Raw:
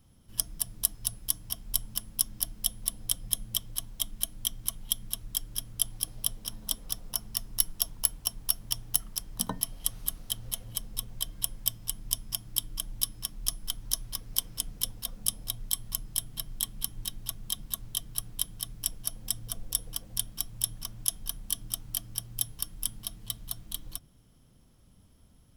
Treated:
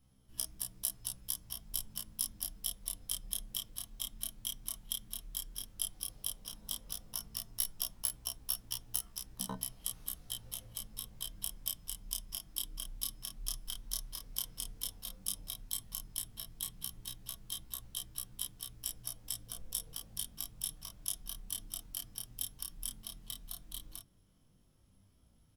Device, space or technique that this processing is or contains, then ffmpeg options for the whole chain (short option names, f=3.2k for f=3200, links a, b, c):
double-tracked vocal: -filter_complex "[0:a]asplit=2[a][b];[b]adelay=31,volume=-4.5dB[c];[a][c]amix=inputs=2:normalize=0,flanger=delay=15.5:depth=7.7:speed=0.11,volume=-5.5dB"